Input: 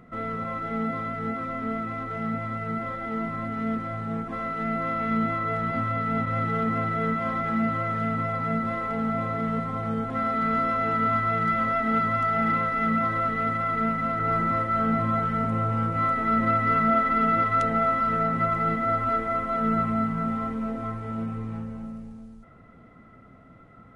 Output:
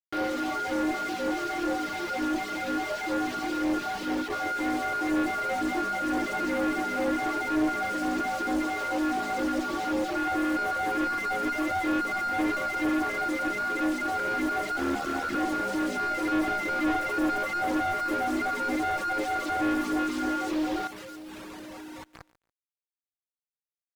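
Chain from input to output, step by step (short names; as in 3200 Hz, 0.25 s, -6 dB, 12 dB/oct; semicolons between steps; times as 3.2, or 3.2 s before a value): bin magnitudes rounded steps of 15 dB; mistuned SSB +87 Hz 210–3000 Hz; tilt -2 dB/oct; 14.76–15.35 ring modulator 39 Hz; on a send at -14 dB: reverb, pre-delay 3 ms; on the sum: bit-crush 6-bit; feedback echo 0.142 s, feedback 21%, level -15 dB; in parallel at -2 dB: limiter -23 dBFS, peak gain reduction 11 dB; on the sum: reverb removal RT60 1.2 s; one-sided clip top -27 dBFS; 20.87–22.14 level quantiser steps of 21 dB; slew limiter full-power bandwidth 58 Hz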